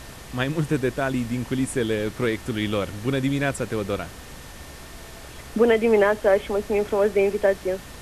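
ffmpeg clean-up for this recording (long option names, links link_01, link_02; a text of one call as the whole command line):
ffmpeg -i in.wav -af "bandreject=frequency=64.2:width_type=h:width=4,bandreject=frequency=128.4:width_type=h:width=4,bandreject=frequency=192.6:width_type=h:width=4,bandreject=frequency=256.8:width_type=h:width=4,bandreject=frequency=1800:width=30,afftdn=noise_reduction=27:noise_floor=-41" out.wav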